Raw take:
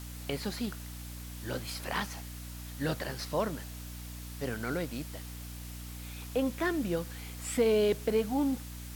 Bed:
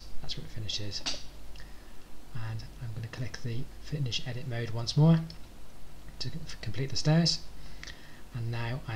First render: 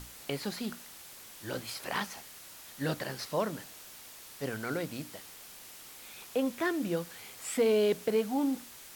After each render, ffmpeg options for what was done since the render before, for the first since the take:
-af "bandreject=f=60:t=h:w=6,bandreject=f=120:t=h:w=6,bandreject=f=180:t=h:w=6,bandreject=f=240:t=h:w=6,bandreject=f=300:t=h:w=6"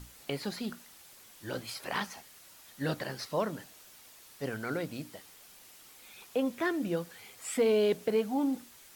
-af "afftdn=nr=6:nf=-50"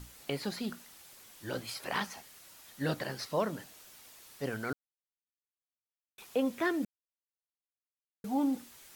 -filter_complex "[0:a]asplit=5[s0][s1][s2][s3][s4];[s0]atrim=end=4.73,asetpts=PTS-STARTPTS,afade=t=out:st=4.726:d=0.004:c=hsin[s5];[s1]atrim=start=4.73:end=6.18,asetpts=PTS-STARTPTS,volume=0[s6];[s2]atrim=start=6.18:end=6.85,asetpts=PTS-STARTPTS,afade=t=in:d=0.004:c=hsin,afade=t=out:st=0.666:d=0.004:c=hsin[s7];[s3]atrim=start=6.85:end=8.24,asetpts=PTS-STARTPTS,volume=0[s8];[s4]atrim=start=8.24,asetpts=PTS-STARTPTS,afade=t=in:d=0.004:c=hsin[s9];[s5][s6][s7][s8][s9]concat=n=5:v=0:a=1"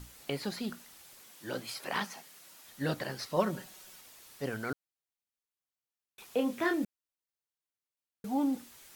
-filter_complex "[0:a]asettb=1/sr,asplit=3[s0][s1][s2];[s0]atrim=end=1.214[s3];[s1]atrim=start=1.21:end=2.66,asetpts=PTS-STARTPTS,afade=t=in:d=0.004:c=qsin,afade=t=out:st=1.446:d=0.004:c=qsin,highpass=f=130:w=0.5412,highpass=f=130:w=1.3066[s4];[s2]atrim=start=2.656[s5];[s3][s4]acrossfade=d=0.004:c1=hsin:c2=qsin[s6];[s6][s5]acrossfade=d=0.004:c1=qsin:c2=hsin,asettb=1/sr,asplit=3[s7][s8][s9];[s7]atrim=end=3.364[s10];[s8]atrim=start=3.36:end=4.01,asetpts=PTS-STARTPTS,afade=t=in:d=0.004:c=qsin,afade=t=out:st=0.646:d=0.004:c=qsin,aecho=1:1:5.4:0.75,atrim=end_sample=28665[s11];[s9]atrim=start=4.006[s12];[s10][s11]acrossfade=d=0.004:c1=hsin:c2=qsin[s13];[s13][s12]acrossfade=d=0.004:c1=qsin:c2=hsin,asettb=1/sr,asplit=3[s14][s15][s16];[s14]atrim=end=6.344[s17];[s15]atrim=start=6.34:end=6.84,asetpts=PTS-STARTPTS,afade=t=in:d=0.004:c=qsin,afade=t=out:st=0.496:d=0.004:c=qsin,asplit=2[s18][s19];[s19]adelay=29,volume=0.531[s20];[s18][s20]amix=inputs=2:normalize=0,atrim=end_sample=22050[s21];[s16]atrim=start=6.836[s22];[s17][s21]acrossfade=d=0.004:c1=hsin:c2=qsin[s23];[s23][s22]acrossfade=d=0.004:c1=qsin:c2=hsin"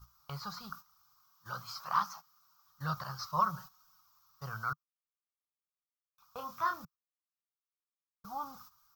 -af "agate=range=0.224:threshold=0.00501:ratio=16:detection=peak,firequalizer=gain_entry='entry(150,0);entry(270,-27);entry(1200,14);entry(1800,-15);entry(2800,-14);entry(5400,2);entry(9500,-22);entry(15000,4)':delay=0.05:min_phase=1"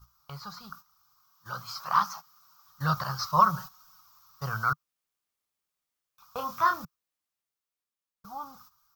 -af "dynaudnorm=f=280:g=13:m=2.82"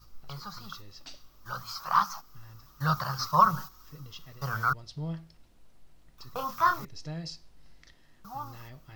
-filter_complex "[1:a]volume=0.211[s0];[0:a][s0]amix=inputs=2:normalize=0"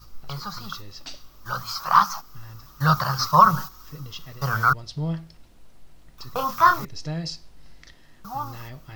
-af "volume=2.51,alimiter=limit=0.708:level=0:latency=1"

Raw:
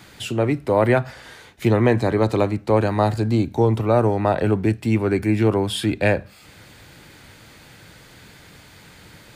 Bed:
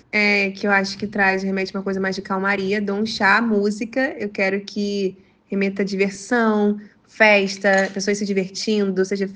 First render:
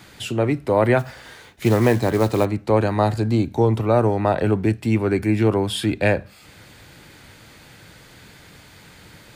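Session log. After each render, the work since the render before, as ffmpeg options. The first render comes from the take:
-filter_complex "[0:a]asplit=3[s0][s1][s2];[s0]afade=t=out:st=0.98:d=0.02[s3];[s1]acrusher=bits=5:mode=log:mix=0:aa=0.000001,afade=t=in:st=0.98:d=0.02,afade=t=out:st=2.44:d=0.02[s4];[s2]afade=t=in:st=2.44:d=0.02[s5];[s3][s4][s5]amix=inputs=3:normalize=0"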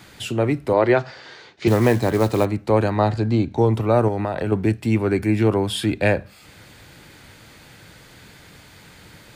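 -filter_complex "[0:a]asettb=1/sr,asplit=3[s0][s1][s2];[s0]atrim=end=0.734[s3];[s1]atrim=start=0.73:end=1.68,asetpts=PTS-STARTPTS,afade=t=in:d=0.004:c=qsin,afade=t=out:st=0.946:d=0.004:c=qsin,highpass=150,equalizer=f=230:t=q:w=4:g=-6,equalizer=f=370:t=q:w=4:g=4,equalizer=f=4500:t=q:w=4:g=5,lowpass=f=6100:w=0.5412,lowpass=f=6100:w=1.3066[s4];[s2]atrim=start=1.676[s5];[s3][s4]acrossfade=d=0.004:c1=hsin:c2=qsin[s6];[s6][s5]acrossfade=d=0.004:c1=qsin:c2=hsin,asettb=1/sr,asplit=3[s7][s8][s9];[s7]atrim=end=2.904[s10];[s8]atrim=start=2.9:end=3.58,asetpts=PTS-STARTPTS,afade=t=in:d=0.004:c=qsin,afade=t=out:st=0.676:d=0.004:c=qsin,lowpass=5500[s11];[s9]atrim=start=3.576[s12];[s10][s11]acrossfade=d=0.004:c1=hsin:c2=qsin[s13];[s13][s12]acrossfade=d=0.004:c1=qsin:c2=hsin,asettb=1/sr,asplit=3[s14][s15][s16];[s14]atrim=end=4.084[s17];[s15]atrim=start=4.08:end=4.52,asetpts=PTS-STARTPTS,afade=t=in:d=0.004:c=qsin,afade=t=out:st=0.436:d=0.004:c=qsin,acompressor=threshold=0.112:ratio=6:attack=3.2:release=140:knee=1:detection=peak[s18];[s16]atrim=start=4.516[s19];[s17][s18]acrossfade=d=0.004:c1=hsin:c2=qsin[s20];[s20][s19]acrossfade=d=0.004:c1=qsin:c2=hsin"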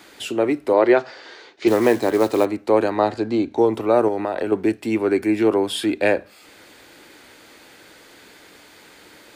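-af "lowshelf=f=210:t=q:w=1.5:g=-13"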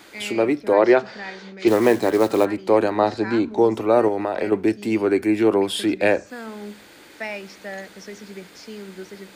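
-filter_complex "[1:a]volume=0.133[s0];[0:a][s0]amix=inputs=2:normalize=0"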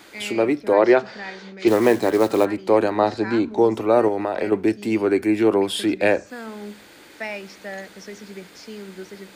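-af anull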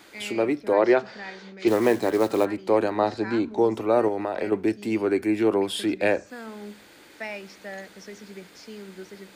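-af "volume=0.631"

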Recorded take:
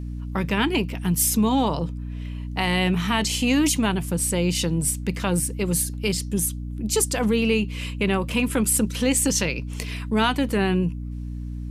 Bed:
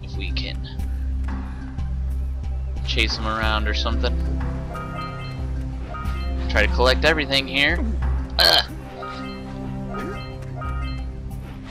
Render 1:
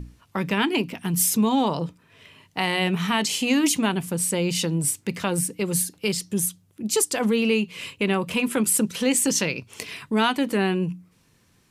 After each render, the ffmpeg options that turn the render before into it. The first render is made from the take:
-af "bandreject=f=60:t=h:w=6,bandreject=f=120:t=h:w=6,bandreject=f=180:t=h:w=6,bandreject=f=240:t=h:w=6,bandreject=f=300:t=h:w=6"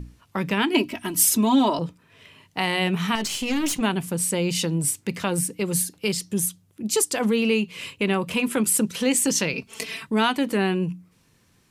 -filter_complex "[0:a]asettb=1/sr,asplit=3[s0][s1][s2];[s0]atrim=end=0.744[s3];[s1]atrim=start=0.74:end=1.79,asetpts=PTS-STARTPTS,afade=t=in:d=0.004:c=qsin,afade=t=out:st=1.046:d=0.004:c=qsin,aecho=1:1:3.1:0.96,atrim=end_sample=46305[s4];[s2]atrim=start=1.786[s5];[s3][s4]acrossfade=d=0.004:c1=hsin:c2=qsin[s6];[s6][s5]acrossfade=d=0.004:c1=qsin:c2=hsin,asettb=1/sr,asplit=3[s7][s8][s9];[s7]atrim=end=3.154[s10];[s8]atrim=start=3.15:end=3.81,asetpts=PTS-STARTPTS,afade=t=in:d=0.004:c=qsin,afade=t=out:st=0.656:d=0.004:c=qsin,aeval=exprs='(tanh(8.91*val(0)+0.5)-tanh(0.5))/8.91':c=same[s11];[s9]atrim=start=3.806[s12];[s10][s11]acrossfade=d=0.004:c1=hsin:c2=qsin[s13];[s13][s12]acrossfade=d=0.004:c1=qsin:c2=hsin,asettb=1/sr,asplit=3[s14][s15][s16];[s14]atrim=end=9.534[s17];[s15]atrim=start=9.53:end=10.07,asetpts=PTS-STARTPTS,afade=t=in:d=0.004:c=qsin,afade=t=out:st=0.536:d=0.004:c=qsin,aecho=1:1:4.5:0.98,atrim=end_sample=23814[s18];[s16]atrim=start=10.066[s19];[s17][s18]acrossfade=d=0.004:c1=hsin:c2=qsin[s20];[s20][s19]acrossfade=d=0.004:c1=qsin:c2=hsin"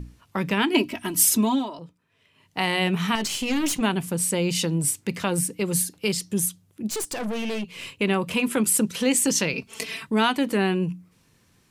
-filter_complex "[0:a]asettb=1/sr,asplit=3[s0][s1][s2];[s0]atrim=end=6.894[s3];[s1]atrim=start=6.89:end=8.01,asetpts=PTS-STARTPTS,afade=t=in:d=0.004:c=qsin,afade=t=out:st=1.116:d=0.004:c=qsin,aeval=exprs='(tanh(20*val(0)+0.4)-tanh(0.4))/20':c=same[s4];[s2]atrim=start=8.006[s5];[s3][s4]acrossfade=d=0.004:c1=hsin:c2=qsin[s6];[s6][s5]acrossfade=d=0.004:c1=qsin:c2=hsin,asplit=3[s7][s8][s9];[s7]atrim=end=1.68,asetpts=PTS-STARTPTS,afade=t=out:st=1.4:d=0.28:silence=0.211349[s10];[s8]atrim=start=1.68:end=2.33,asetpts=PTS-STARTPTS,volume=0.211[s11];[s9]atrim=start=2.33,asetpts=PTS-STARTPTS,afade=t=in:d=0.28:silence=0.211349[s12];[s10][s11][s12]concat=n=3:v=0:a=1"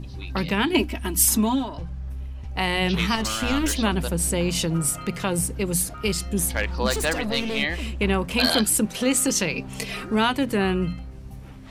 -filter_complex "[1:a]volume=0.422[s0];[0:a][s0]amix=inputs=2:normalize=0"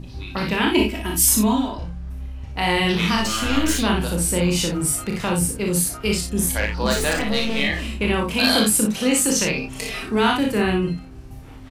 -filter_complex "[0:a]asplit=2[s0][s1];[s1]adelay=28,volume=0.447[s2];[s0][s2]amix=inputs=2:normalize=0,aecho=1:1:39|58:0.501|0.596"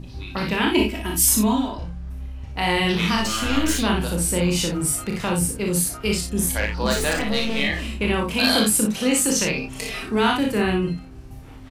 -af "volume=0.891"

